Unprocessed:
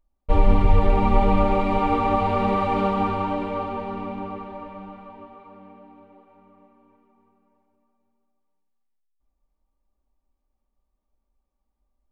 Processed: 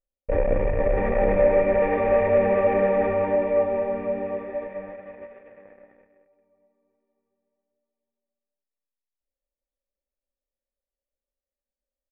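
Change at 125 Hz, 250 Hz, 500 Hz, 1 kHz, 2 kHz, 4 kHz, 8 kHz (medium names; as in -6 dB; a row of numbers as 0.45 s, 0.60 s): -7.5 dB, -5.0 dB, +6.5 dB, -6.5 dB, +2.5 dB, under -15 dB, no reading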